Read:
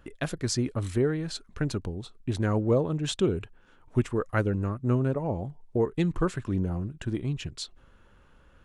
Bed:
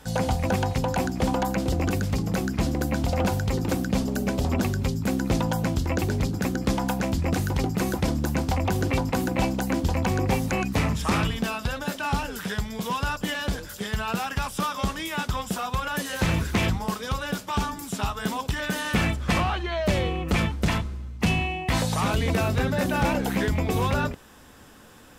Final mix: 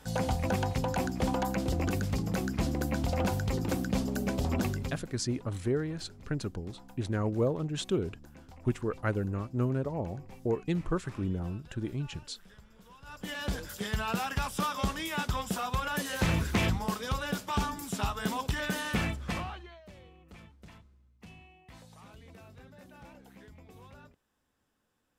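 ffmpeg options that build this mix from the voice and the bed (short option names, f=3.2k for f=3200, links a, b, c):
-filter_complex "[0:a]adelay=4700,volume=-4.5dB[a];[1:a]volume=18dB,afade=t=out:st=4.67:d=0.41:silence=0.0794328,afade=t=in:st=13.03:d=0.56:silence=0.0668344,afade=t=out:st=18.63:d=1.18:silence=0.0595662[b];[a][b]amix=inputs=2:normalize=0"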